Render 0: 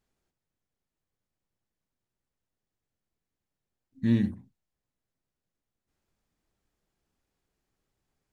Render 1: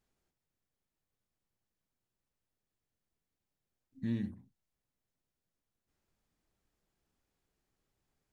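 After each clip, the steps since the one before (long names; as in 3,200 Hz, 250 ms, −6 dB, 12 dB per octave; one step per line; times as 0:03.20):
downward compressor 1.5 to 1, threshold −45 dBFS, peak gain reduction 9.5 dB
level −2 dB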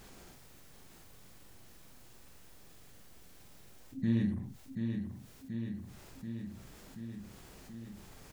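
double-tracking delay 44 ms −3 dB
repeating echo 732 ms, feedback 50%, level −11.5 dB
envelope flattener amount 50%
level +1 dB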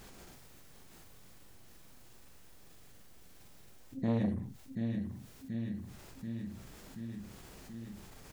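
saturating transformer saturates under 390 Hz
level +1.5 dB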